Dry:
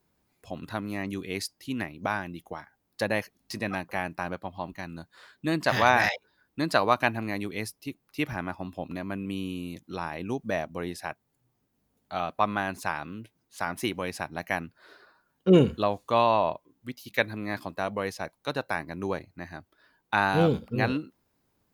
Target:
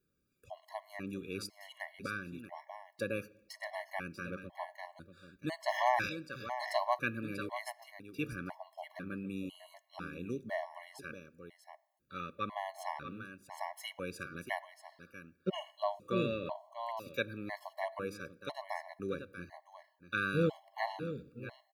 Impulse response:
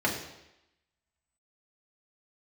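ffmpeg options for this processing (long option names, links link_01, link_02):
-filter_complex "[0:a]aecho=1:1:638:0.316,asplit=2[link_01][link_02];[1:a]atrim=start_sample=2205[link_03];[link_02][link_03]afir=irnorm=-1:irlink=0,volume=-26.5dB[link_04];[link_01][link_04]amix=inputs=2:normalize=0,afftfilt=real='re*gt(sin(2*PI*1*pts/sr)*(1-2*mod(floor(b*sr/1024/560),2)),0)':imag='im*gt(sin(2*PI*1*pts/sr)*(1-2*mod(floor(b*sr/1024/560),2)),0)':win_size=1024:overlap=0.75,volume=-7.5dB"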